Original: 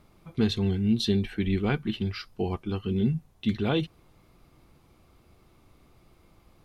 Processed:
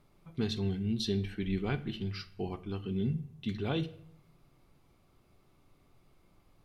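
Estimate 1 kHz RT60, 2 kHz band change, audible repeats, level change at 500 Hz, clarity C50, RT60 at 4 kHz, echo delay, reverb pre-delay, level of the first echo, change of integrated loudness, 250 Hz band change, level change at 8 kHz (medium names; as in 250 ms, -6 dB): 0.55 s, -7.0 dB, no echo, -6.5 dB, 16.5 dB, 0.45 s, no echo, 5 ms, no echo, -7.0 dB, -7.5 dB, no reading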